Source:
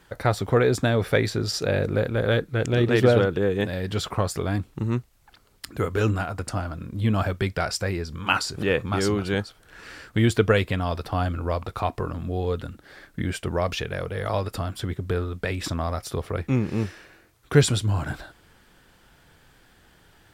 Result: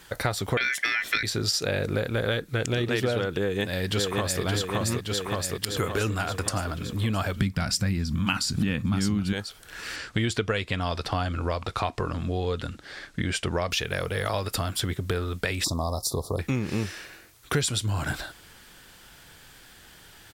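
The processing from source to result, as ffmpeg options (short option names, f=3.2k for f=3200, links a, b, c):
-filter_complex "[0:a]asettb=1/sr,asplit=3[a][b][c];[a]atrim=end=0.574[d];[b]atrim=start=0.57:end=1.23,asetpts=PTS-STARTPTS,afade=t=in:d=0.004:c=qsin,afade=t=out:st=0.656:d=0.004:c=qsin,aeval=exprs='val(0)*sin(2*PI*1900*n/s)':c=same[e];[c]atrim=start=1.226[f];[d][e]acrossfade=d=0.004:c1=hsin:c2=qsin[g];[g][f]acrossfade=d=0.004:c1=qsin:c2=hsin,asplit=2[h][i];[i]afade=t=in:st=3.4:d=0.01,afade=t=out:st=4.43:d=0.01,aecho=0:1:570|1140|1710|2280|2850|3420|3990|4560|5130:0.794328|0.476597|0.285958|0.171575|0.102945|0.061767|0.0370602|0.0222361|0.0133417[j];[h][j]amix=inputs=2:normalize=0,asettb=1/sr,asplit=3[k][l][m];[k]atrim=end=7.364[n];[l]atrim=start=7.36:end=9.33,asetpts=PTS-STARTPTS,afade=t=in:d=0.004:c=qsin,afade=t=out:st=1.966:d=0.004:c=qsin,lowshelf=f=310:t=q:w=3:g=9.5[o];[m]atrim=start=9.326[p];[n][o]acrossfade=d=0.004:c1=hsin:c2=qsin[q];[q][p]acrossfade=d=0.004:c1=qsin:c2=hsin,asettb=1/sr,asplit=3[r][s][t];[r]atrim=end=9.964[u];[s]atrim=start=9.96:end=13.71,asetpts=PTS-STARTPTS,afade=t=in:d=0.004:c=qsin,afade=t=out:st=3.746:d=0.004:c=qsin,lowpass=7.2k[v];[t]atrim=start=13.706[w];[u][v]acrossfade=d=0.004:c1=hsin:c2=qsin[x];[x][w]acrossfade=d=0.004:c1=qsin:c2=hsin,asettb=1/sr,asplit=3[y][z][aa];[y]atrim=end=15.644[ab];[z]atrim=start=15.64:end=16.39,asetpts=PTS-STARTPTS,afade=t=in:d=0.004:c=qsin,afade=t=out:st=0.746:d=0.004:c=qsin,asuperstop=centerf=2100:order=12:qfactor=0.76[ac];[aa]atrim=start=16.386[ad];[ab][ac]acrossfade=d=0.004:c1=hsin:c2=qsin[ae];[ae][ad]acrossfade=d=0.004:c1=qsin:c2=hsin,highshelf=f=2k:g=10.5,acompressor=threshold=-25dB:ratio=5,volume=1.5dB"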